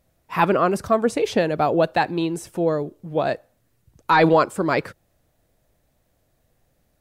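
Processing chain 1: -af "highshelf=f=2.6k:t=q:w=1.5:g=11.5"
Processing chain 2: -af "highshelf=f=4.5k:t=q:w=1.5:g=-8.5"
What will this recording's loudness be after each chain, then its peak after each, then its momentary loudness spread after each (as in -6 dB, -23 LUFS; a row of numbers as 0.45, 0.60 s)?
-20.5, -21.0 LUFS; -4.0, -6.0 dBFS; 11, 10 LU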